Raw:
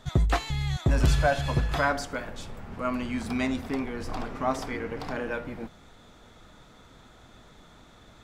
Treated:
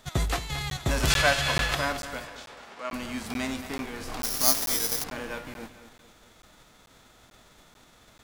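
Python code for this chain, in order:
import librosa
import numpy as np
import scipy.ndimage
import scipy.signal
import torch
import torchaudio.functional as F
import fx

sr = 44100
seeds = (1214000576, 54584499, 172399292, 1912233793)

y = fx.envelope_flatten(x, sr, power=0.6)
y = fx.peak_eq(y, sr, hz=2500.0, db=9.5, octaves=2.9, at=(1.1, 1.75))
y = fx.bandpass_edges(y, sr, low_hz=440.0, high_hz=5600.0, at=(2.25, 2.93))
y = fx.echo_feedback(y, sr, ms=224, feedback_pct=43, wet_db=-13)
y = fx.resample_bad(y, sr, factor=8, down='none', up='zero_stuff', at=(4.23, 5.04))
y = fx.buffer_crackle(y, sr, first_s=0.7, period_s=0.44, block=512, kind='zero')
y = F.gain(torch.from_numpy(y), -4.0).numpy()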